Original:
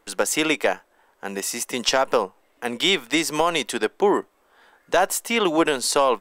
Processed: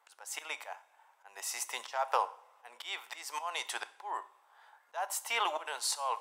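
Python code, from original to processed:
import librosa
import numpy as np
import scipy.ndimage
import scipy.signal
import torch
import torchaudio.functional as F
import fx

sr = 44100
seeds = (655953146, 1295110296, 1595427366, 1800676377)

y = fx.ladder_highpass(x, sr, hz=710.0, resonance_pct=50)
y = fx.auto_swell(y, sr, attack_ms=285.0)
y = fx.rev_double_slope(y, sr, seeds[0], early_s=0.51, late_s=2.6, knee_db=-22, drr_db=12.5)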